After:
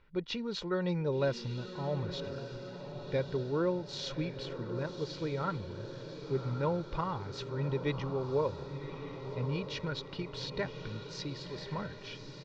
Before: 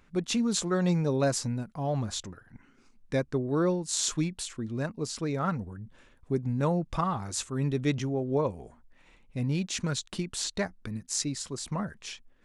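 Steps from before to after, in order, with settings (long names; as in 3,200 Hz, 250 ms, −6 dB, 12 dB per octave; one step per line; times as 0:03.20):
Butterworth low-pass 4,700 Hz 36 dB per octave
comb filter 2.1 ms, depth 52%
on a send: feedback delay with all-pass diffusion 1,119 ms, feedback 60%, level −9 dB
on the sum: level −5.5 dB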